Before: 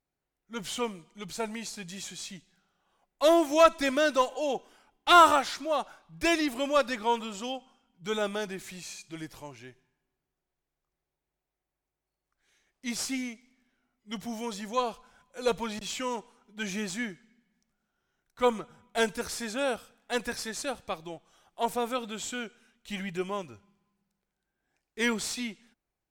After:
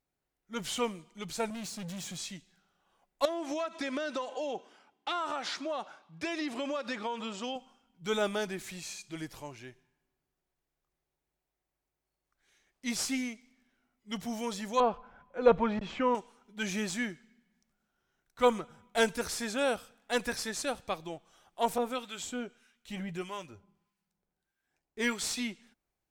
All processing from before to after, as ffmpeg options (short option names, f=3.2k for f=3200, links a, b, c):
-filter_complex "[0:a]asettb=1/sr,asplit=3[a][b][c];[a]atrim=end=1.504[d];[b]atrim=start=1.5:end=2.18,asetpts=PTS-STARTPTS,afade=t=in:d=0.004:c=qsin,afade=t=out:st=0.676:d=0.004:c=qsin,highpass=f=120:w=0.5412,highpass=f=120:w=1.3066,bass=f=250:g=12,treble=f=4k:g=1,asoftclip=type=hard:threshold=-38.5dB[e];[c]atrim=start=2.176[f];[d][e]acrossfade=d=0.004:c1=hsin:c2=qsin[g];[g][f]acrossfade=d=0.004:c1=qsin:c2=hsin,asettb=1/sr,asplit=3[h][i][j];[h]atrim=end=3.254[k];[i]atrim=start=3.25:end=7.56,asetpts=PTS-STARTPTS,afade=t=in:d=0.004:c=qsin,afade=t=out:st=4.306:d=0.004:c=qsin,highpass=160,lowpass=6.2k,acompressor=threshold=-30dB:ratio=16:attack=3.2:release=140:knee=1:detection=peak[l];[j]atrim=start=7.556[m];[k][l]acrossfade=d=0.004:c1=hsin:c2=qsin[n];[n][m]acrossfade=d=0.004:c1=qsin:c2=hsin,asettb=1/sr,asplit=3[o][p][q];[o]atrim=end=14.804[r];[p]atrim=start=14.8:end=16.15,asetpts=PTS-STARTPTS,afade=t=in:d=0.004:c=qsin,afade=t=out:st=1.346:d=0.004:c=qsin,acontrast=36,lowpass=1.6k[s];[q]atrim=start=16.146[t];[r][s]acrossfade=d=0.004:c1=hsin:c2=qsin[u];[u][t]acrossfade=d=0.004:c1=qsin:c2=hsin,asettb=1/sr,asplit=3[v][w][x];[v]atrim=end=21.784[y];[w]atrim=start=21.78:end=25.22,asetpts=PTS-STARTPTS,afade=t=in:d=0.004:c=qsin,afade=t=out:st=3.436:d=0.004:c=qsin,asplit=2[z][aa];[aa]adelay=12,volume=-11dB[ab];[z][ab]amix=inputs=2:normalize=0,atrim=end_sample=151704,acrossover=split=1100[ac][ad];[ac]aeval=exprs='val(0)*(1-0.7/2+0.7/2*cos(2*PI*1.6*n/s))':c=same[ae];[ad]aeval=exprs='val(0)*(1-0.7/2-0.7/2*cos(2*PI*1.6*n/s))':c=same[af];[ae][af]amix=inputs=2:normalize=0[ag];[x]atrim=start=25.216[ah];[y][ag]acrossfade=d=0.004:c1=hsin:c2=qsin[ai];[ai][ah]acrossfade=d=0.004:c1=qsin:c2=hsin"